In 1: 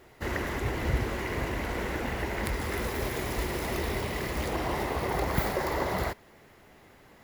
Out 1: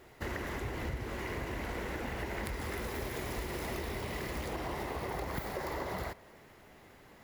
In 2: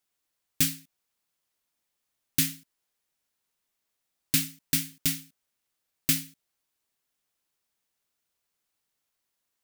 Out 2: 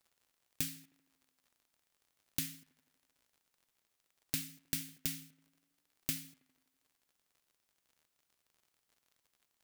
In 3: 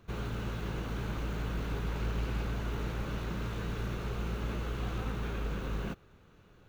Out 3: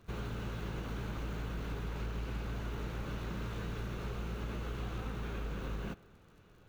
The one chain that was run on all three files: compression 5:1, threshold -33 dBFS; crackle 62 per s -55 dBFS; tape echo 80 ms, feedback 77%, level -21.5 dB, low-pass 2.7 kHz; trim -1.5 dB

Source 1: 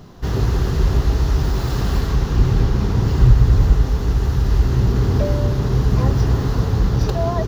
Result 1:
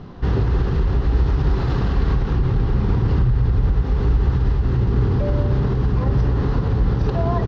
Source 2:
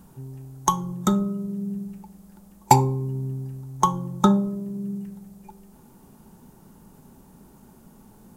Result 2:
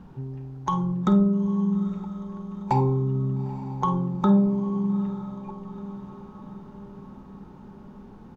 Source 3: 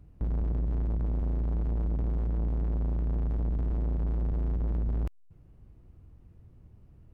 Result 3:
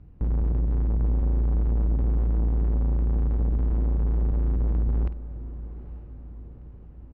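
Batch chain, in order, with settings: band-stop 640 Hz, Q 12; compression 2:1, threshold -19 dBFS; peak limiter -15 dBFS; distance through air 250 m; doubling 50 ms -13.5 dB; echo that smears into a reverb 887 ms, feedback 55%, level -14 dB; trim +4.5 dB

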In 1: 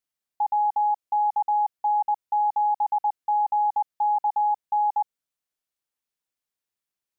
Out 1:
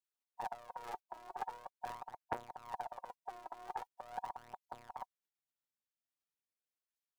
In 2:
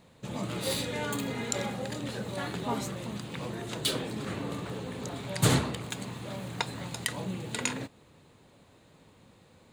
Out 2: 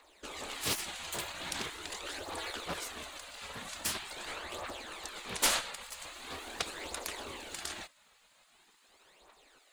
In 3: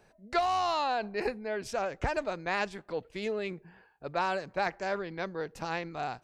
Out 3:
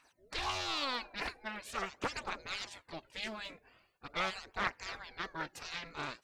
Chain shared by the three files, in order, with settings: phaser 0.43 Hz, delay 3.1 ms, feedback 63%; spectral gate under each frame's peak -15 dB weak; loudspeaker Doppler distortion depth 0.64 ms; trim +1 dB

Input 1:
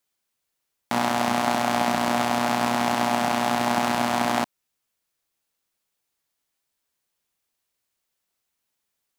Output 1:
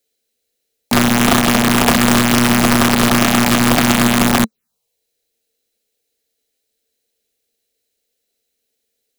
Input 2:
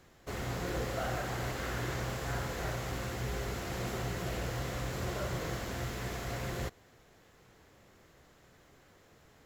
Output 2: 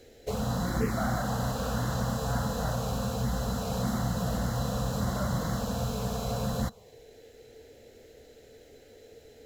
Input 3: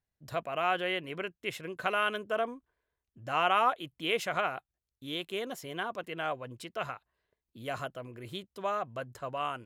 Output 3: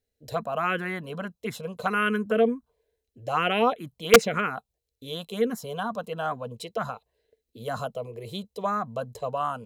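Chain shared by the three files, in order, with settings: small resonant body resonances 220/450/4000 Hz, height 14 dB, ringing for 55 ms; touch-sensitive phaser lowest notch 180 Hz, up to 3.3 kHz, full sweep at -16.5 dBFS; integer overflow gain 11.5 dB; trim +6 dB

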